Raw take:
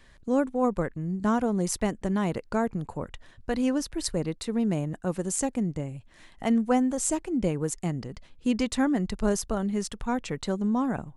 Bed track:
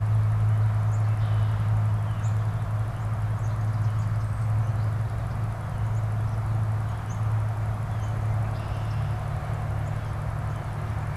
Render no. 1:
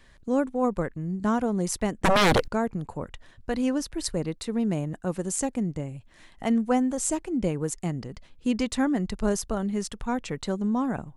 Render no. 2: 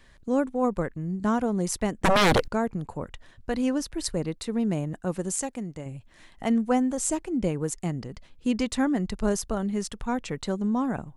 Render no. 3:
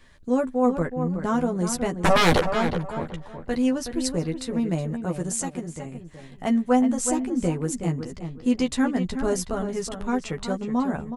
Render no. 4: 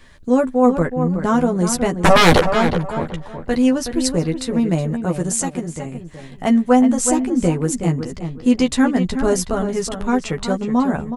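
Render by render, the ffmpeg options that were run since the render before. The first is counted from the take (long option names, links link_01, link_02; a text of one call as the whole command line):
ffmpeg -i in.wav -filter_complex "[0:a]asettb=1/sr,asplit=3[link_01][link_02][link_03];[link_01]atrim=end=2.044[link_04];[link_02]atrim=start=2.04:end=2.48,asetpts=PTS-STARTPTS,afade=type=in:duration=0.004:curve=qsin,afade=type=out:start_time=0.436:duration=0.004:curve=qsin,aeval=exprs='0.168*sin(PI/2*5.62*val(0)/0.168)':channel_layout=same[link_05];[link_03]atrim=start=2.476[link_06];[link_04][link_05]acrossfade=duration=0.004:curve1=hsin:curve2=qsin[link_07];[link_07][link_06]acrossfade=duration=0.004:curve1=qsin:curve2=hsin" out.wav
ffmpeg -i in.wav -filter_complex "[0:a]asettb=1/sr,asplit=3[link_01][link_02][link_03];[link_01]atrim=end=5.364[link_04];[link_02]atrim=start=5.36:end=5.86,asetpts=PTS-STARTPTS,afade=type=in:duration=0.004:curve=qsin,afade=type=out:start_time=0.496:duration=0.004:curve=qsin,lowshelf=frequency=470:gain=-8[link_05];[link_03]atrim=start=5.856[link_06];[link_04][link_05]acrossfade=duration=0.004:curve1=hsin:curve2=qsin[link_07];[link_07][link_06]acrossfade=duration=0.004:curve1=qsin:curve2=hsin" out.wav
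ffmpeg -i in.wav -filter_complex "[0:a]asplit=2[link_01][link_02];[link_02]adelay=12,volume=-4dB[link_03];[link_01][link_03]amix=inputs=2:normalize=0,asplit=2[link_04][link_05];[link_05]adelay=371,lowpass=frequency=2500:poles=1,volume=-8dB,asplit=2[link_06][link_07];[link_07]adelay=371,lowpass=frequency=2500:poles=1,volume=0.26,asplit=2[link_08][link_09];[link_09]adelay=371,lowpass=frequency=2500:poles=1,volume=0.26[link_10];[link_04][link_06][link_08][link_10]amix=inputs=4:normalize=0" out.wav
ffmpeg -i in.wav -af "volume=7dB,alimiter=limit=-2dB:level=0:latency=1" out.wav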